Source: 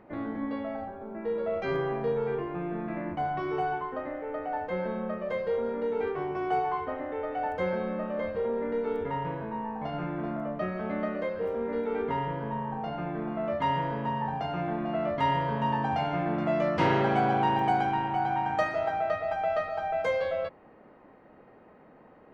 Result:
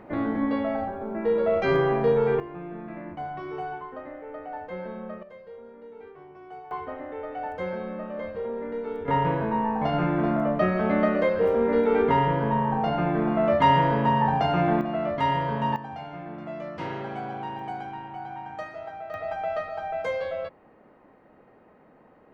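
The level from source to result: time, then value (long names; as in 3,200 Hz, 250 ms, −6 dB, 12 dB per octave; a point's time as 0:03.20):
+7.5 dB
from 0:02.40 −4 dB
from 0:05.23 −15 dB
from 0:06.71 −2 dB
from 0:09.08 +9 dB
from 0:14.81 +2 dB
from 0:15.76 −9 dB
from 0:19.14 −1 dB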